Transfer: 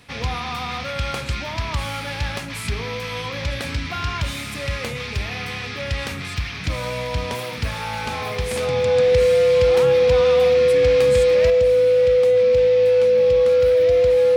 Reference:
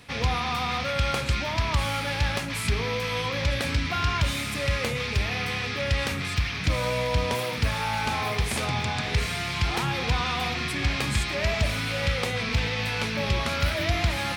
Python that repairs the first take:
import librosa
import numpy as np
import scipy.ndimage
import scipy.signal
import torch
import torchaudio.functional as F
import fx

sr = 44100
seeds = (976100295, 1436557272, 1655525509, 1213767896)

y = fx.notch(x, sr, hz=500.0, q=30.0)
y = fx.gain(y, sr, db=fx.steps((0.0, 0.0), (11.5, 6.5)))